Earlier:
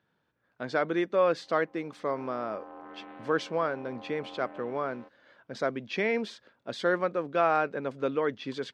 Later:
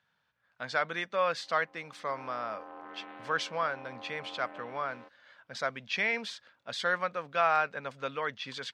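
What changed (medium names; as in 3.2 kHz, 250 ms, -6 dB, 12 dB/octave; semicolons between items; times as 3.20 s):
speech: add peaking EQ 340 Hz -14 dB 0.93 oct; master: add tilt shelf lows -4.5 dB, about 820 Hz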